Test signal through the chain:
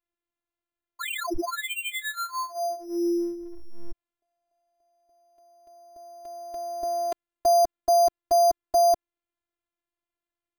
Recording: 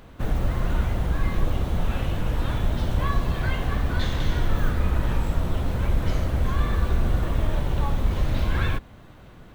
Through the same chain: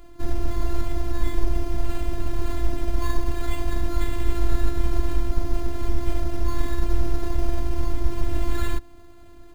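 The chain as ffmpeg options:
-af "acrusher=samples=8:mix=1:aa=0.000001,lowshelf=f=480:g=8.5,afftfilt=real='hypot(re,im)*cos(PI*b)':imag='0':win_size=512:overlap=0.75,volume=0.841"

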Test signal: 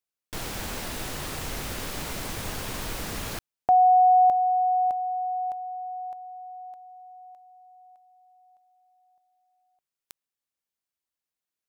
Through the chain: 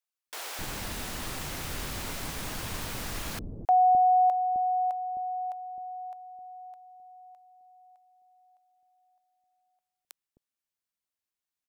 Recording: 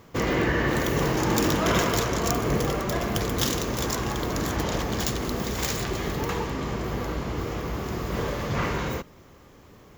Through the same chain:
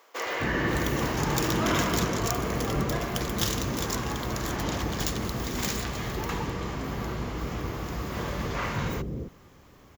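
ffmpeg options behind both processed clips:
-filter_complex "[0:a]acrossover=split=460[s0][s1];[s0]adelay=260[s2];[s2][s1]amix=inputs=2:normalize=0,volume=0.794"

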